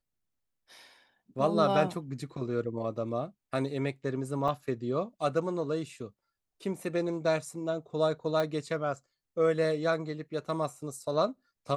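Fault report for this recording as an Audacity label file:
4.480000	4.480000	dropout 4.5 ms
8.400000	8.400000	pop -19 dBFS

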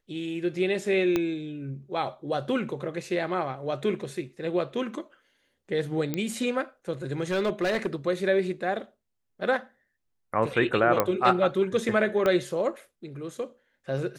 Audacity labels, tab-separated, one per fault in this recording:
1.160000	1.160000	pop -12 dBFS
6.140000	6.140000	pop -14 dBFS
7.200000	7.870000	clipped -21.5 dBFS
11.000000	11.000000	pop -8 dBFS
12.260000	12.260000	pop -13 dBFS

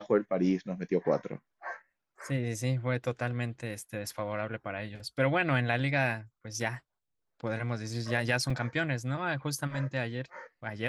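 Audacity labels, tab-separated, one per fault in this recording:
8.500000	8.500000	dropout 3.9 ms

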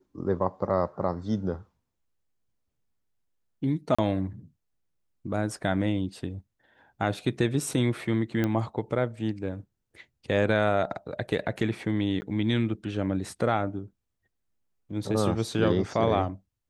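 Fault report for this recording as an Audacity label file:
3.950000	3.980000	dropout 35 ms
8.440000	8.440000	pop -15 dBFS
12.210000	12.220000	dropout 10 ms

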